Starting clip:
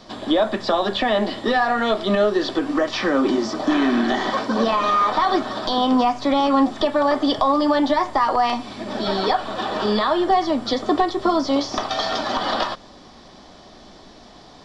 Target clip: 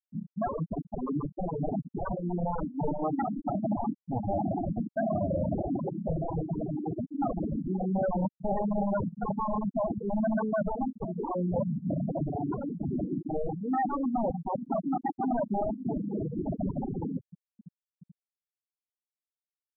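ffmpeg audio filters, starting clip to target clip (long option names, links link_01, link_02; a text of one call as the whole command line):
ffmpeg -i in.wav -af "asoftclip=type=hard:threshold=-13dB,asuperpass=centerf=240:order=8:qfactor=0.66,areverse,acompressor=threshold=-31dB:ratio=12,areverse,aeval=exprs='(mod(31.6*val(0)+1,2)-1)/31.6':channel_layout=same,aecho=1:1:391|782|1173:0.316|0.0854|0.0231,asetrate=32667,aresample=44100,afftfilt=real='re*gte(hypot(re,im),0.0708)':imag='im*gte(hypot(re,im),0.0708)':win_size=1024:overlap=0.75,volume=8.5dB" out.wav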